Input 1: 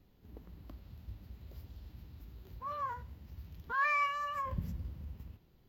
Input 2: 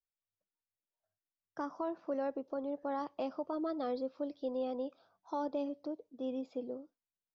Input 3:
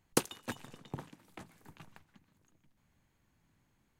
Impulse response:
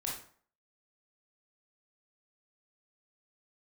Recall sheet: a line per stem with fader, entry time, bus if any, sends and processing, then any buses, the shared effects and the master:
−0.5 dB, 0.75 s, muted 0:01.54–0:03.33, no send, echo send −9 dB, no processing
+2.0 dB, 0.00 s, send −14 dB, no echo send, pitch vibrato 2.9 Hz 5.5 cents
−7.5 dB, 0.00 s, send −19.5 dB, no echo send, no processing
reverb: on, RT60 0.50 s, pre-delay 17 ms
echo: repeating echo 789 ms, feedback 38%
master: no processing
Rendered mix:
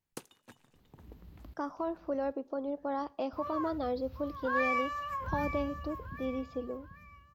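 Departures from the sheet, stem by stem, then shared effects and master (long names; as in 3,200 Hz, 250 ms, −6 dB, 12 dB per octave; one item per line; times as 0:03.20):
stem 3 −7.5 dB → −15.5 dB
reverb return −8.5 dB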